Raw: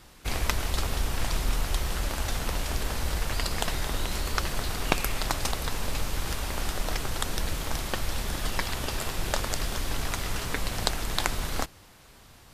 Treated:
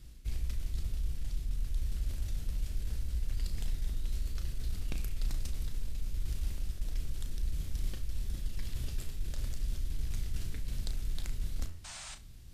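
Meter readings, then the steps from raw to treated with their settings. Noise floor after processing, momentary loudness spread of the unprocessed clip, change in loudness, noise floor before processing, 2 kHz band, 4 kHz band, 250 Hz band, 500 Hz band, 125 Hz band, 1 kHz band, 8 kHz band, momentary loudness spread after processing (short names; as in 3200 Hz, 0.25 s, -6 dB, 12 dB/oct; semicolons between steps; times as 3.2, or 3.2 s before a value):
-47 dBFS, 3 LU, -9.0 dB, -53 dBFS, -21.5 dB, -17.5 dB, -13.0 dB, -21.5 dB, -5.0 dB, -26.5 dB, -15.5 dB, 3 LU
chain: passive tone stack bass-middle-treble 10-0-1; de-hum 80.8 Hz, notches 37; reverse; compressor 5:1, threshold -41 dBFS, peak gain reduction 14 dB; reverse; painted sound noise, 11.84–12.15, 550–9300 Hz -59 dBFS; soft clip -34.5 dBFS, distortion -25 dB; on a send: flutter echo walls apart 6 m, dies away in 0.24 s; on the sum: gain +12.5 dB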